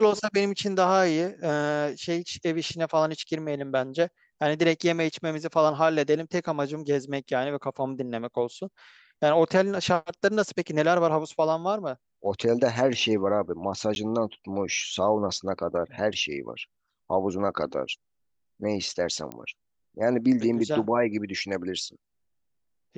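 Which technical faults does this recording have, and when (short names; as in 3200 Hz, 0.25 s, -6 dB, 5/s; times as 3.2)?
13.95–13.96 gap 11 ms
19.32 pop -20 dBFS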